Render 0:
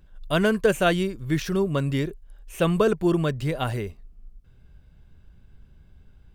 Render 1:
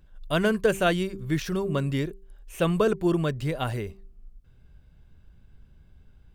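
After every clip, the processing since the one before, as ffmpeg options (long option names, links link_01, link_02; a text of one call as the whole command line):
ffmpeg -i in.wav -af "bandreject=frequency=194.2:width_type=h:width=4,bandreject=frequency=388.4:width_type=h:width=4,volume=-2dB" out.wav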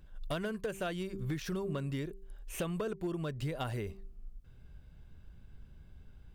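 ffmpeg -i in.wav -af "acompressor=threshold=-32dB:ratio=16,asoftclip=type=hard:threshold=-28dB" out.wav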